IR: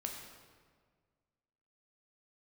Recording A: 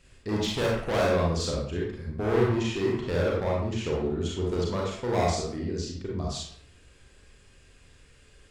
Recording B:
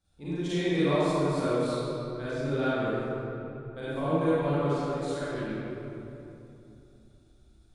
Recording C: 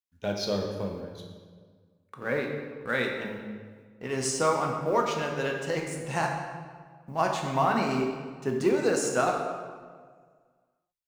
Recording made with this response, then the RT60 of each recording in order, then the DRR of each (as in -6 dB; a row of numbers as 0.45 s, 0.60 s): C; 0.65 s, 3.0 s, 1.7 s; -3.5 dB, -13.0 dB, 1.0 dB